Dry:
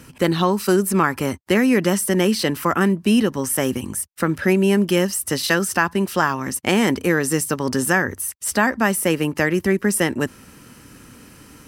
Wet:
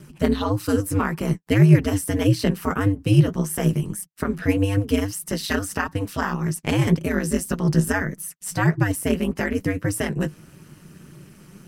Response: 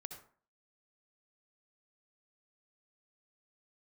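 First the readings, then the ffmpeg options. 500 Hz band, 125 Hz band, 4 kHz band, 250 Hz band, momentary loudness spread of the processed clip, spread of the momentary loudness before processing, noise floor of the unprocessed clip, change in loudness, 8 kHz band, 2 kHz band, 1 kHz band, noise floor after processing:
-5.5 dB, +6.0 dB, -6.5 dB, -2.5 dB, 9 LU, 6 LU, -47 dBFS, -2.5 dB, -7.0 dB, -6.5 dB, -6.5 dB, -51 dBFS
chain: -af "flanger=delay=3.9:depth=8.3:regen=35:speed=1.7:shape=sinusoidal,aeval=exprs='val(0)*sin(2*PI*100*n/s)':c=same,equalizer=f=160:w=1.7:g=14.5"

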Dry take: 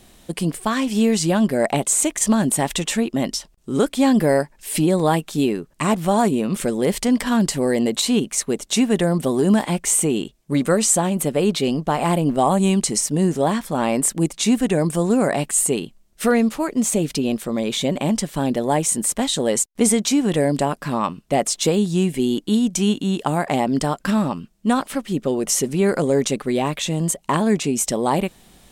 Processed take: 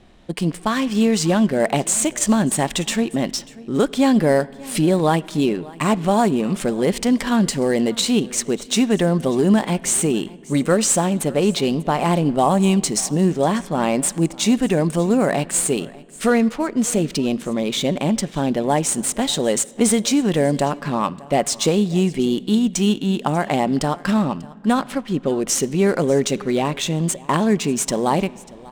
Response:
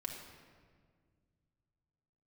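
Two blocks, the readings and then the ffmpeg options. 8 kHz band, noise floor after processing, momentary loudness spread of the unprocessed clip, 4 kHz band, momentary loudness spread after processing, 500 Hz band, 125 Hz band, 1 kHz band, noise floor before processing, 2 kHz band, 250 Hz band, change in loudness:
-1.0 dB, -41 dBFS, 5 LU, +1.0 dB, 5 LU, +1.0 dB, +1.0 dB, +1.0 dB, -55 dBFS, +1.0 dB, +0.5 dB, +0.5 dB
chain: -filter_complex "[0:a]asplit=2[a][b];[1:a]atrim=start_sample=2205,asetrate=29988,aresample=44100,highshelf=f=2.3k:g=11[c];[b][c]afir=irnorm=-1:irlink=0,volume=-20dB[d];[a][d]amix=inputs=2:normalize=0,adynamicsmooth=sensitivity=7:basefreq=2.9k,aecho=1:1:592:0.0841"

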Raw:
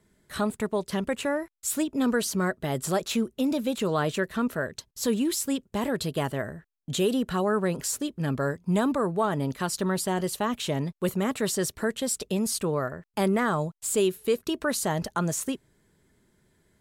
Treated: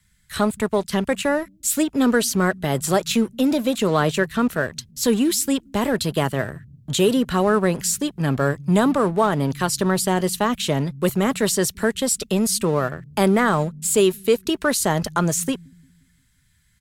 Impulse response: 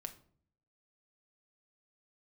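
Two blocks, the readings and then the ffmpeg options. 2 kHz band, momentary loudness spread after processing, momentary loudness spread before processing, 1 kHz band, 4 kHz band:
+7.5 dB, 5 LU, 5 LU, +7.0 dB, +7.5 dB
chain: -filter_complex "[0:a]acrossover=split=150|1400|3700[a][b][c][d];[a]aecho=1:1:176|352|528|704|880:0.355|0.163|0.0751|0.0345|0.0159[e];[b]aeval=exprs='sgn(val(0))*max(abs(val(0))-0.00596,0)':c=same[f];[e][f][c][d]amix=inputs=4:normalize=0,volume=7.5dB"

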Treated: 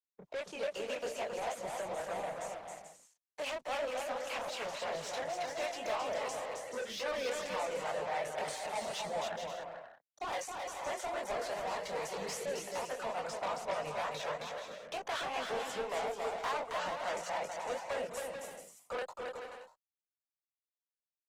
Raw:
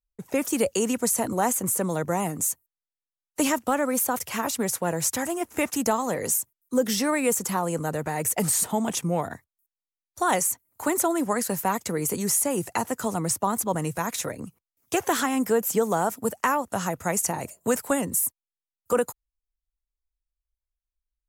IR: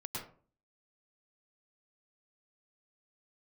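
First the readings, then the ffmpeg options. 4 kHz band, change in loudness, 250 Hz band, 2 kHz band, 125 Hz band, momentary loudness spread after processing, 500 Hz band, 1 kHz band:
-6.0 dB, -13.0 dB, -24.0 dB, -8.0 dB, -22.0 dB, 7 LU, -9.5 dB, -9.5 dB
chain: -filter_complex "[0:a]anlmdn=1,highpass=f=140:w=0.5412,highpass=f=140:w=1.3066,lowshelf=f=420:t=q:w=3:g=-11.5,asplit=2[a][b];[b]acompressor=threshold=-33dB:ratio=20,volume=1dB[c];[a][c]amix=inputs=2:normalize=0,lowpass=f=3.6k:t=q:w=1.7,flanger=delay=19.5:depth=7.8:speed=2.4,asoftclip=type=tanh:threshold=-27dB,acrossover=split=560[d][e];[d]aeval=exprs='val(0)*(1-0.5/2+0.5/2*cos(2*PI*3.6*n/s))':c=same[f];[e]aeval=exprs='val(0)*(1-0.5/2-0.5/2*cos(2*PI*3.6*n/s))':c=same[g];[f][g]amix=inputs=2:normalize=0,asplit=2[h][i];[i]aecho=0:1:270|432|529.2|587.5|622.5:0.631|0.398|0.251|0.158|0.1[j];[h][j]amix=inputs=2:normalize=0,volume=-5dB" -ar 48000 -c:a libopus -b:a 16k

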